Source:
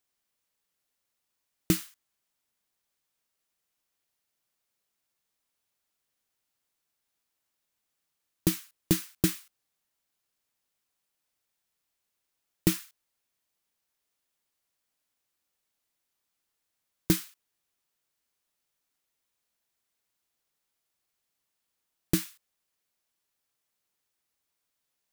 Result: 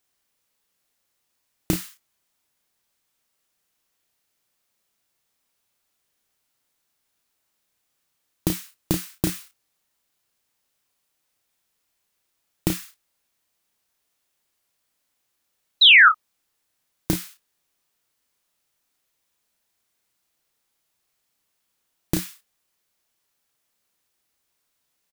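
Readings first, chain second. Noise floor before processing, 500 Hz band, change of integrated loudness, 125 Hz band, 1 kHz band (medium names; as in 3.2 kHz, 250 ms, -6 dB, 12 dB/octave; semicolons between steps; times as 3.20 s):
-83 dBFS, +2.5 dB, +11.0 dB, +2.5 dB, +24.0 dB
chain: compression 5:1, threshold -25 dBFS, peak gain reduction 7.5 dB; painted sound fall, 15.81–16.09 s, 1.2–4.1 kHz -18 dBFS; on a send: early reflections 32 ms -5.5 dB, 55 ms -17.5 dB; on the sum: trim +6 dB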